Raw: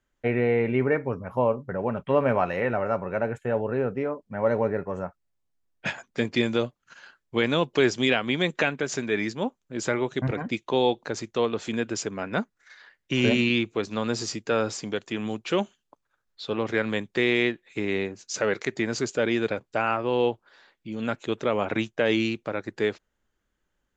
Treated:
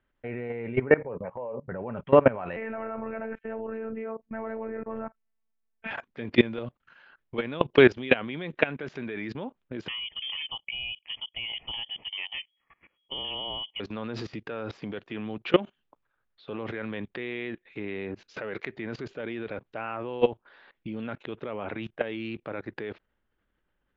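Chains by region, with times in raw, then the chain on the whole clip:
1–1.68 speaker cabinet 170–2600 Hz, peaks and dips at 280 Hz -10 dB, 520 Hz +8 dB, 910 Hz +4 dB, 1400 Hz -10 dB + compressor 2:1, threshold -32 dBFS
2.56–5.91 resonant high shelf 3100 Hz -6 dB, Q 1.5 + robotiser 223 Hz
9.88–13.8 fixed phaser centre 350 Hz, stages 8 + inverted band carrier 3300 Hz
whole clip: LPF 3300 Hz 24 dB/oct; level quantiser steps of 21 dB; gain +7.5 dB

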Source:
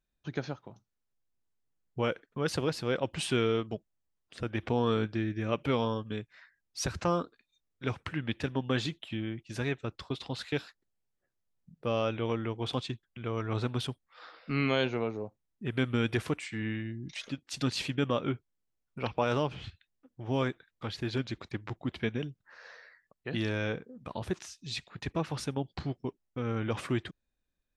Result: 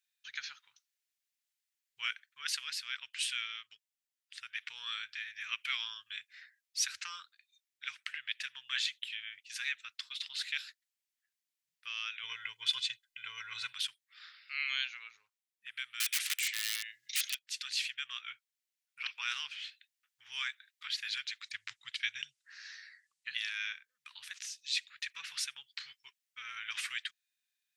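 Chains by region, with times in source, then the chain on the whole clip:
12.23–13.73 low shelf 430 Hz +10.5 dB + comb 2 ms, depth 90%
16–17.39 EQ curve 130 Hz 0 dB, 1100 Hz +5 dB, 3400 Hz +12 dB + wrapped overs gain 23 dB
21.45–23.33 LPF 9600 Hz 24 dB/oct + tone controls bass +11 dB, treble +8 dB
whole clip: inverse Chebyshev high-pass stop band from 700 Hz, stop band 50 dB; vocal rider within 4 dB 2 s; gain +2.5 dB

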